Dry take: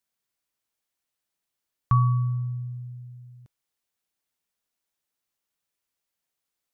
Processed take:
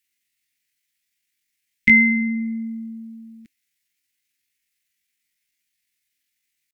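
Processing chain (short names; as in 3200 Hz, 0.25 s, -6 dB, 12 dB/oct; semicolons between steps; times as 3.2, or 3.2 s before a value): EQ curve 100 Hz 0 dB, 160 Hz +1 dB, 370 Hz -21 dB, 560 Hz -20 dB, 1100 Hz +14 dB, 1800 Hz +7 dB; in parallel at -1.5 dB: compressor, threshold -28 dBFS, peak gain reduction 17.5 dB; on the sum: pitch shift +10.5 st; gain -1 dB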